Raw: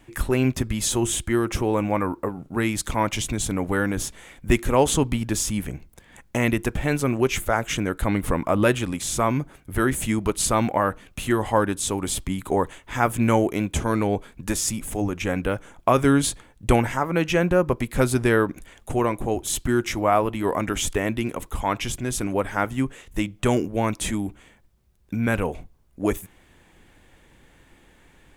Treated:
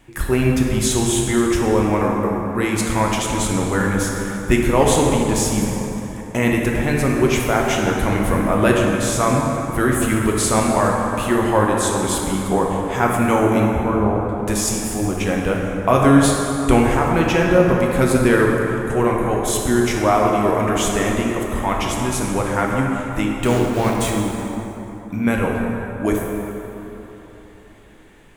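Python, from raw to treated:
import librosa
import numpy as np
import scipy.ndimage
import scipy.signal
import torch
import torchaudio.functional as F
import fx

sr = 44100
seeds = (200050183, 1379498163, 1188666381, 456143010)

y = fx.ellip_lowpass(x, sr, hz=1400.0, order=4, stop_db=40, at=(13.71, 14.29))
y = fx.sample_gate(y, sr, floor_db=-29.5, at=(23.37, 24.11))
y = fx.rev_plate(y, sr, seeds[0], rt60_s=3.6, hf_ratio=0.5, predelay_ms=0, drr_db=-1.5)
y = y * librosa.db_to_amplitude(1.5)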